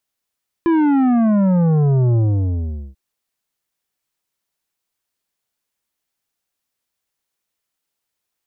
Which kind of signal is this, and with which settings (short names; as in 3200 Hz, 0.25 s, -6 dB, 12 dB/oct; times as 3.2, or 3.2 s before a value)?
sub drop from 340 Hz, over 2.29 s, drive 10 dB, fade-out 0.79 s, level -13 dB